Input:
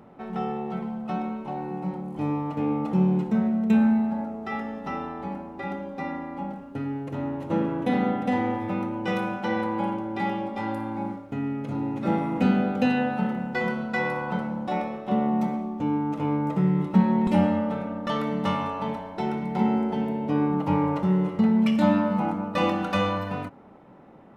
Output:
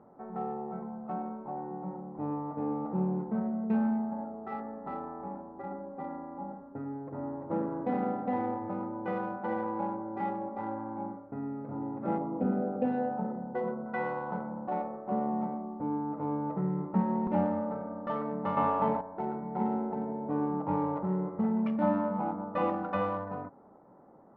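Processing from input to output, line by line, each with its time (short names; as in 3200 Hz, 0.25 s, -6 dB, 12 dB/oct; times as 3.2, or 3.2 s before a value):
5.41–6.49 air absorption 210 m
12.18–13.86 formant sharpening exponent 1.5
18.57–19.01 gain +7.5 dB
whole clip: Wiener smoothing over 15 samples; LPF 1200 Hz 12 dB/oct; low shelf 340 Hz -11 dB; gain -1 dB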